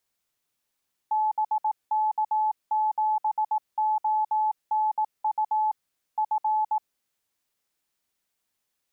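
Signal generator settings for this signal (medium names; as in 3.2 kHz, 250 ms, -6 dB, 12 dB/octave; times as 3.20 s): Morse "BK7ONU F" 18 wpm 861 Hz -21 dBFS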